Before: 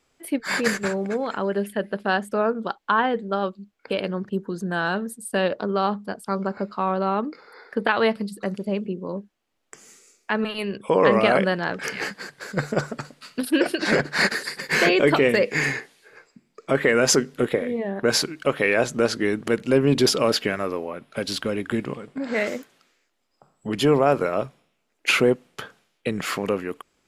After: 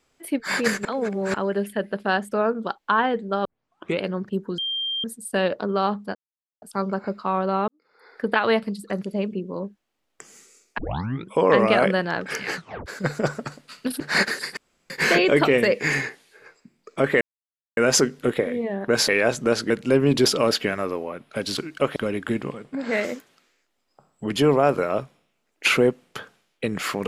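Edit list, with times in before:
0:00.85–0:01.34: reverse
0:03.45: tape start 0.56 s
0:04.58–0:05.04: beep over 3,180 Hz −24 dBFS
0:06.15: splice in silence 0.47 s
0:07.21–0:07.74: fade in quadratic
0:10.31: tape start 0.53 s
0:12.08: tape stop 0.31 s
0:13.53–0:14.04: remove
0:14.61: splice in room tone 0.33 s
0:16.92: splice in silence 0.56 s
0:18.23–0:18.61: move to 0:21.39
0:19.23–0:19.51: remove

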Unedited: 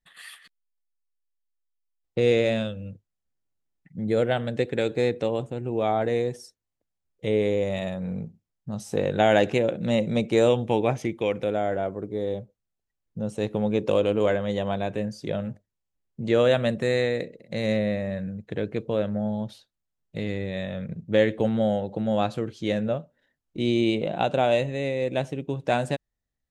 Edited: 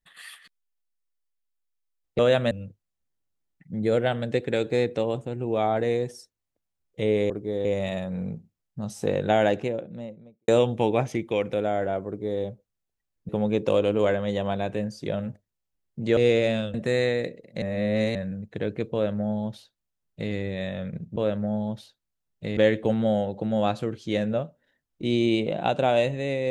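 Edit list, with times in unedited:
0:02.19–0:02.76: swap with 0:16.38–0:16.70
0:08.91–0:10.38: fade out and dull
0:11.97–0:12.32: duplicate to 0:07.55
0:13.19–0:13.50: remove
0:17.58–0:18.11: reverse
0:18.88–0:20.29: duplicate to 0:21.12

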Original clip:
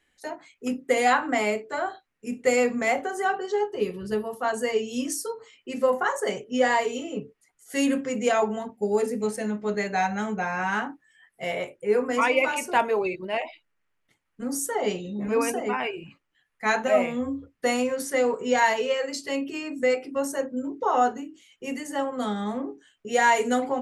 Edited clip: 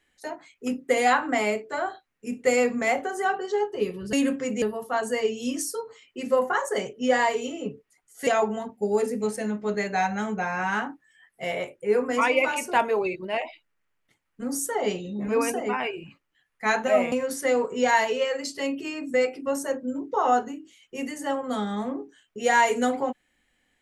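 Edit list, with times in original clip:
0:07.78–0:08.27: move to 0:04.13
0:17.12–0:17.81: remove

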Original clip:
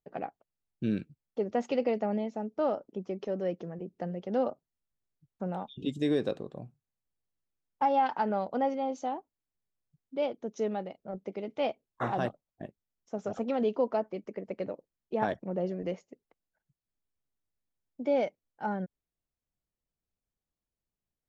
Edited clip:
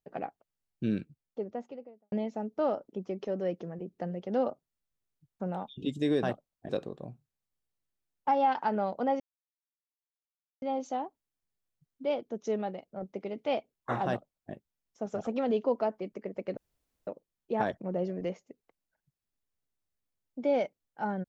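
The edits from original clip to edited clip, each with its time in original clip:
0:00.86–0:02.12: fade out and dull
0:08.74: splice in silence 1.42 s
0:12.19–0:12.65: duplicate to 0:06.23
0:14.69: splice in room tone 0.50 s

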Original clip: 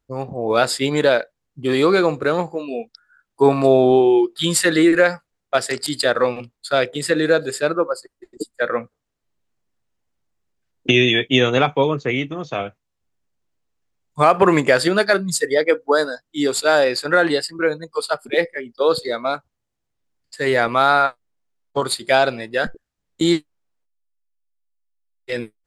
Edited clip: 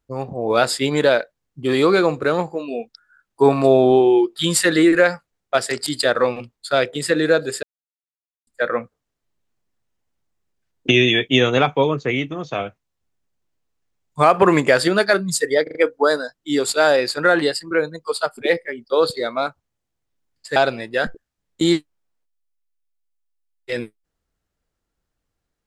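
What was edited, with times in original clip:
0:07.63–0:08.47: silence
0:15.63: stutter 0.04 s, 4 plays
0:20.44–0:22.16: remove

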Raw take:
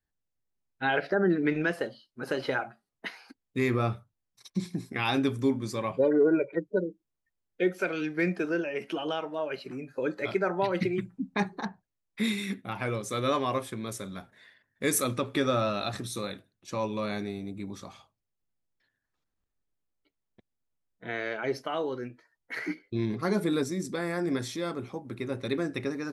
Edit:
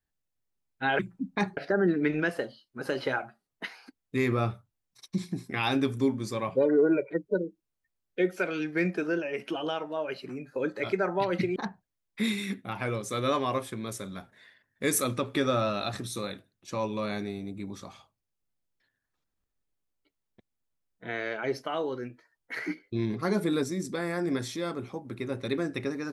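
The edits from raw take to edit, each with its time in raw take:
0:10.98–0:11.56: move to 0:00.99

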